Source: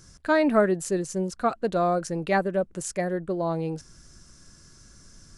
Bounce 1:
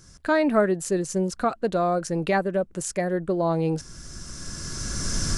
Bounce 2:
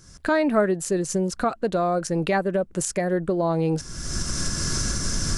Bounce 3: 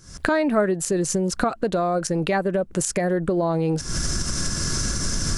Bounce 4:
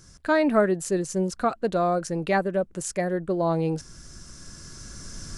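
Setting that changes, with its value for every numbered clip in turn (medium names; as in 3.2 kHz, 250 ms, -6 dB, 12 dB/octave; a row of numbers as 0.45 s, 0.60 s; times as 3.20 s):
recorder AGC, rising by: 13 dB/s, 36 dB/s, 90 dB/s, 5.1 dB/s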